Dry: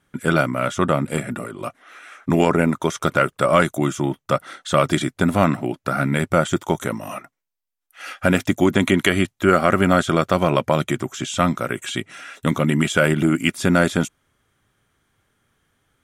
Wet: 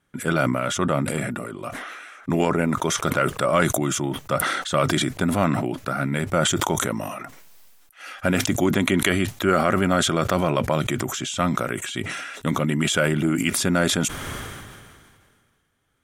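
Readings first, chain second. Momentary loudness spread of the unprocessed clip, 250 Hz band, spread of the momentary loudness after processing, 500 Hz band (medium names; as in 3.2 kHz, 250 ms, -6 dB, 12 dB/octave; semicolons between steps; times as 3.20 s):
12 LU, -3.0 dB, 12 LU, -3.5 dB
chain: decay stretcher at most 30 dB/s; trim -4.5 dB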